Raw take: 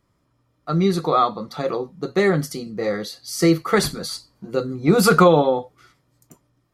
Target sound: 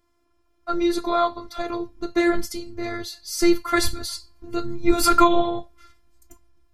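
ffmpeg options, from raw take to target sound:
-af "afftfilt=real='hypot(re,im)*cos(PI*b)':imag='0':win_size=512:overlap=0.75,asubboost=boost=6.5:cutoff=140,volume=1.41"

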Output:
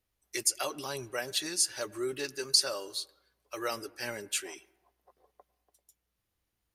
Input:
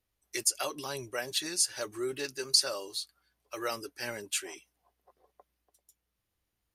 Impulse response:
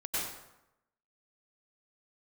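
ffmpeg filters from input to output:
-filter_complex "[0:a]asplit=2[s0][s1];[1:a]atrim=start_sample=2205,lowpass=2700[s2];[s1][s2]afir=irnorm=-1:irlink=0,volume=0.0501[s3];[s0][s3]amix=inputs=2:normalize=0"

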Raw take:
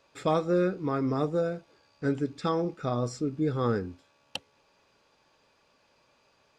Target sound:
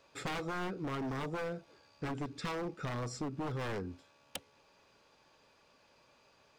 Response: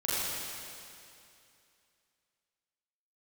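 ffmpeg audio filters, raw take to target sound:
-af "aeval=exprs='0.0473*(abs(mod(val(0)/0.0473+3,4)-2)-1)':c=same,acompressor=threshold=0.0158:ratio=4"

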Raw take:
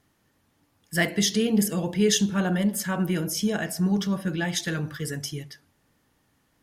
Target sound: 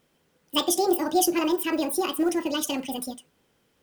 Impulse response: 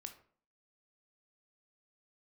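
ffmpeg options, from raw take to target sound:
-af "asetrate=76440,aresample=44100,acrusher=bits=8:mode=log:mix=0:aa=0.000001"

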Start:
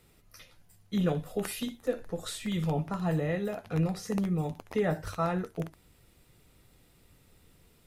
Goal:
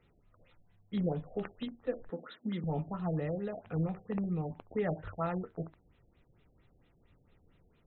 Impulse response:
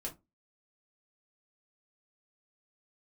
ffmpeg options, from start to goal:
-filter_complex "[0:a]asettb=1/sr,asplit=3[s0][s1][s2];[s0]atrim=end=2.104[s3];[s1]atrim=start=2.1:end=2.64,asetpts=PTS-STARTPTS,afade=t=in:d=0.004:c=qsin,afade=t=out:st=0.536:d=0.004:c=qsin,highpass=f=180:w=0.5412,highpass=f=180:w=1.3066,equalizer=f=250:t=q:w=4:g=10,equalizer=f=680:t=q:w=4:g=-4,equalizer=f=1500:t=q:w=4:g=5,equalizer=f=2600:t=q:w=4:g=-8,lowpass=f=9400:w=0.5412,lowpass=f=9400:w=1.3066[s4];[s2]atrim=start=2.636[s5];[s3][s4]acrossfade=d=0.004:c1=hsin:c2=qsin[s6];[s6][s5]acrossfade=d=0.004:c1=qsin:c2=hsin,aexciter=amount=15.1:drive=3:freq=6500,afftfilt=real='re*lt(b*sr/1024,750*pow(4200/750,0.5+0.5*sin(2*PI*4.4*pts/sr)))':imag='im*lt(b*sr/1024,750*pow(4200/750,0.5+0.5*sin(2*PI*4.4*pts/sr)))':win_size=1024:overlap=0.75,volume=0.596"

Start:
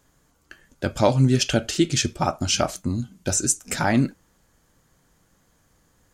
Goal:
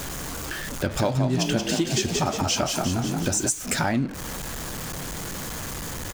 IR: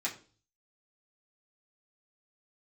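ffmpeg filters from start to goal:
-filter_complex "[0:a]aeval=exprs='val(0)+0.5*0.0335*sgn(val(0))':c=same,asplit=3[s0][s1][s2];[s0]afade=t=out:st=0.9:d=0.02[s3];[s1]asplit=8[s4][s5][s6][s7][s8][s9][s10][s11];[s5]adelay=178,afreqshift=40,volume=0.531[s12];[s6]adelay=356,afreqshift=80,volume=0.285[s13];[s7]adelay=534,afreqshift=120,volume=0.155[s14];[s8]adelay=712,afreqshift=160,volume=0.0832[s15];[s9]adelay=890,afreqshift=200,volume=0.0452[s16];[s10]adelay=1068,afreqshift=240,volume=0.0243[s17];[s11]adelay=1246,afreqshift=280,volume=0.0132[s18];[s4][s12][s13][s14][s15][s16][s17][s18]amix=inputs=8:normalize=0,afade=t=in:st=0.9:d=0.02,afade=t=out:st=3.49:d=0.02[s19];[s2]afade=t=in:st=3.49:d=0.02[s20];[s3][s19][s20]amix=inputs=3:normalize=0,acompressor=threshold=0.0562:ratio=3,anlmdn=0.251,volume=1.33"

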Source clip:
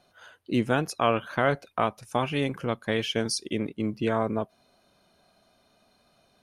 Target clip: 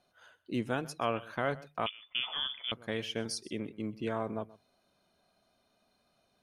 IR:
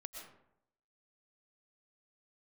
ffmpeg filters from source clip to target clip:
-filter_complex "[0:a]bandreject=f=50:t=h:w=6,bandreject=f=100:t=h:w=6,bandreject=f=150:t=h:w=6,asplit=2[s0][s1];[1:a]atrim=start_sample=2205,atrim=end_sample=3969,adelay=128[s2];[s1][s2]afir=irnorm=-1:irlink=0,volume=0.2[s3];[s0][s3]amix=inputs=2:normalize=0,asettb=1/sr,asplit=3[s4][s5][s6];[s4]atrim=end=1.864[s7];[s5]atrim=start=1.86:end=2.72,asetpts=PTS-STARTPTS,afade=t=in:d=0.004:c=qsin,afade=t=out:st=0.856:d=0.004:c=qsin,lowpass=f=3100:t=q:w=0.5098,lowpass=f=3100:t=q:w=0.6013,lowpass=f=3100:t=q:w=0.9,lowpass=f=3100:t=q:w=2.563,afreqshift=-3600[s8];[s6]atrim=start=2.716[s9];[s7][s8]acrossfade=d=0.004:c1=hsin:c2=qsin[s10];[s10][s9]acrossfade=d=0.004:c1=qsin:c2=hsin,volume=0.376"

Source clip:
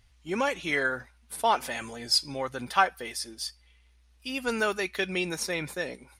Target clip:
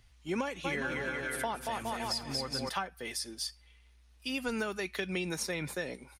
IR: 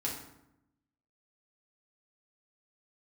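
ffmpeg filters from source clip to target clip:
-filter_complex "[0:a]asplit=3[s0][s1][s2];[s0]afade=t=out:st=0.64:d=0.02[s3];[s1]aecho=1:1:230|414|561.2|679|773.2:0.631|0.398|0.251|0.158|0.1,afade=t=in:st=0.64:d=0.02,afade=t=out:st=2.68:d=0.02[s4];[s2]afade=t=in:st=2.68:d=0.02[s5];[s3][s4][s5]amix=inputs=3:normalize=0,acrossover=split=230[s6][s7];[s7]acompressor=threshold=0.0251:ratio=10[s8];[s6][s8]amix=inputs=2:normalize=0"

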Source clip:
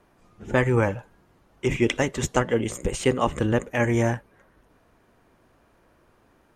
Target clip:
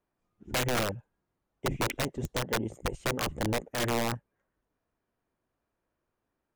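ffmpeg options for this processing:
-af "afwtdn=0.0501,aeval=exprs='(mod(6.31*val(0)+1,2)-1)/6.31':c=same,volume=0.501"

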